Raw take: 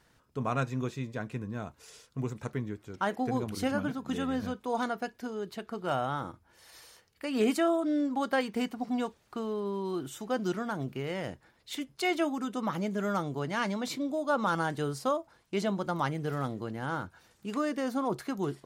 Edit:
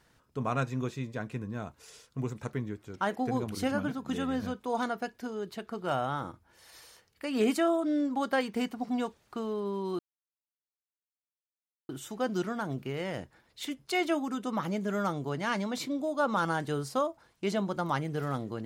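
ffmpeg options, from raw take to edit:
-filter_complex "[0:a]asplit=2[s0][s1];[s0]atrim=end=9.99,asetpts=PTS-STARTPTS,afade=t=out:st=9.986:d=0.004:c=hsin,apad=pad_dur=1.9[s2];[s1]atrim=start=9.99,asetpts=PTS-STARTPTS,afade=t=in:d=0.004:c=hsin[s3];[s2][s3]concat=n=2:v=0:a=1"

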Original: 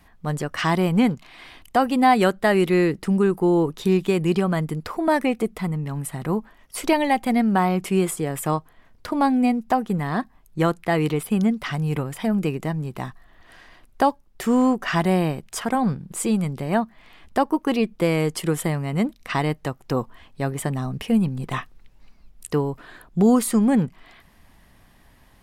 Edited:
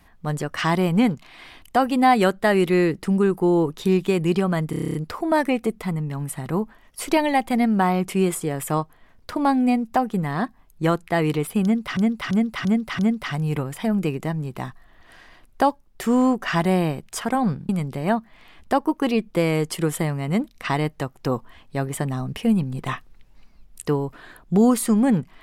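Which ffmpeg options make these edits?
-filter_complex "[0:a]asplit=14[s0][s1][s2][s3][s4][s5][s6][s7][s8][s9][s10][s11][s12][s13];[s0]atrim=end=4.732[s14];[s1]atrim=start=4.698:end=4.732[s15];[s2]atrim=start=4.698:end=4.732[s16];[s3]atrim=start=4.698:end=4.732[s17];[s4]atrim=start=4.698:end=4.732[s18];[s5]atrim=start=4.698:end=4.732[s19];[s6]atrim=start=4.698:end=4.732[s20];[s7]atrim=start=4.698:end=4.732[s21];[s8]atrim=start=4.698:end=11.732[s22];[s9]atrim=start=11.388:end=11.732[s23];[s10]atrim=start=11.388:end=11.732[s24];[s11]atrim=start=11.388:end=11.732[s25];[s12]atrim=start=11.388:end=16.092[s26];[s13]atrim=start=16.338[s27];[s14][s15]acrossfade=d=0.004:c1=hsin:c2=hsin[s28];[s28][s16]acrossfade=d=0.004:c1=hsin:c2=hsin[s29];[s29][s17]acrossfade=d=0.004:c1=hsin:c2=hsin[s30];[s30][s18]acrossfade=d=0.004:c1=hsin:c2=hsin[s31];[s31][s19]acrossfade=d=0.004:c1=hsin:c2=hsin[s32];[s32][s20]acrossfade=d=0.004:c1=hsin:c2=hsin[s33];[s33][s21]acrossfade=d=0.004:c1=hsin:c2=hsin[s34];[s34][s22]acrossfade=d=0.004:c1=hsin:c2=hsin[s35];[s35][s23]acrossfade=d=0.004:c1=hsin:c2=hsin[s36];[s36][s24]acrossfade=d=0.004:c1=hsin:c2=hsin[s37];[s37][s25]acrossfade=d=0.004:c1=hsin:c2=hsin[s38];[s38][s26]acrossfade=d=0.004:c1=hsin:c2=hsin[s39];[s39][s27]acrossfade=d=0.004:c1=hsin:c2=hsin"

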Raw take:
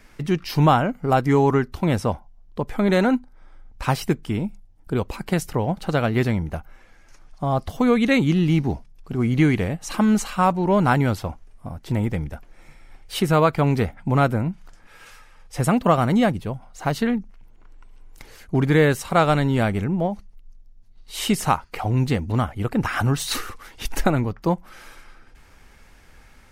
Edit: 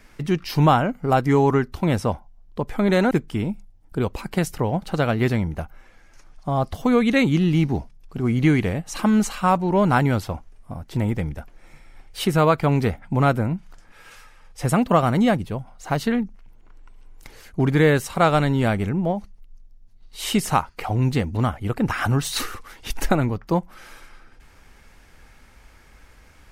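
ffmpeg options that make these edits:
-filter_complex "[0:a]asplit=2[s0][s1];[s0]atrim=end=3.112[s2];[s1]atrim=start=4.058[s3];[s2][s3]acrossfade=d=0.004:c1=hsin:c2=hsin"

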